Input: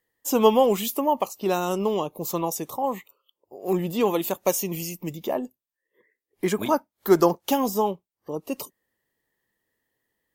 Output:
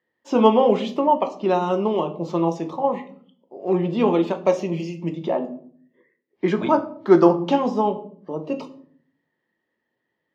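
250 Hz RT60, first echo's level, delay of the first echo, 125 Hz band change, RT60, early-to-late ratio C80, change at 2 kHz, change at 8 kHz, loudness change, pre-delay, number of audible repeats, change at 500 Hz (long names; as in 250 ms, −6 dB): 0.85 s, no echo audible, no echo audible, +5.0 dB, 0.60 s, 18.0 dB, +1.5 dB, below −15 dB, +3.5 dB, 3 ms, no echo audible, +3.5 dB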